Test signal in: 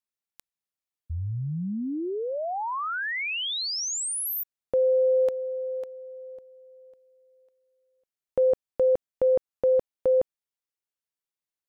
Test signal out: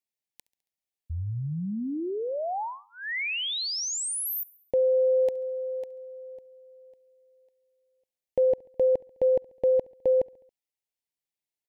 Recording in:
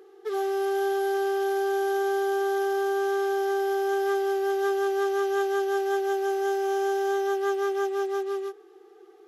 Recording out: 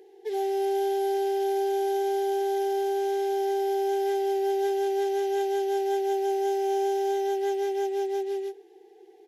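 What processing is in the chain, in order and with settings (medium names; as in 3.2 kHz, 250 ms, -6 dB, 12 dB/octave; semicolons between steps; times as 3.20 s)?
Chebyshev band-stop 870–1900 Hz, order 2; feedback delay 69 ms, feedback 58%, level -23.5 dB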